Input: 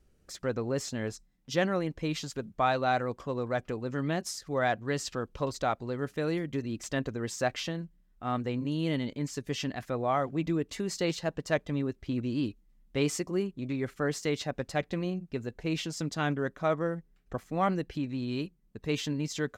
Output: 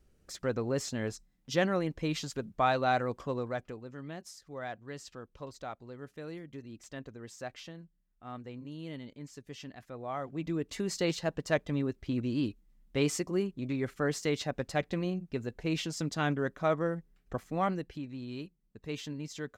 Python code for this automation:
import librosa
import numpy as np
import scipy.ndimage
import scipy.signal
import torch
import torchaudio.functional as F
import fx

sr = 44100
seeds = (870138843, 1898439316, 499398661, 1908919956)

y = fx.gain(x, sr, db=fx.line((3.32, -0.5), (3.93, -12.0), (9.9, -12.0), (10.81, -0.5), (17.47, -0.5), (18.04, -7.5)))